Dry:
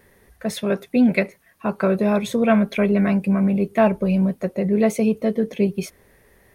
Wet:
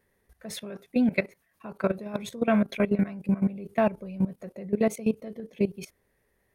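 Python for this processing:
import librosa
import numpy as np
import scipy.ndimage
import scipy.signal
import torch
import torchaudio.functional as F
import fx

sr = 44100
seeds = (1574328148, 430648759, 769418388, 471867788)

y = fx.level_steps(x, sr, step_db=17)
y = y * 10.0 ** (-3.5 / 20.0)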